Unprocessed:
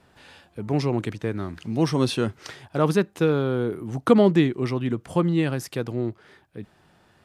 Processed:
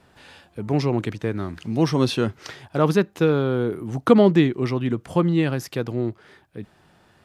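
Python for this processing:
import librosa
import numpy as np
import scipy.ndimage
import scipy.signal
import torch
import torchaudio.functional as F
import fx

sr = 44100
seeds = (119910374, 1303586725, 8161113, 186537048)

y = fx.dynamic_eq(x, sr, hz=8900.0, q=2.2, threshold_db=-58.0, ratio=4.0, max_db=-6)
y = F.gain(torch.from_numpy(y), 2.0).numpy()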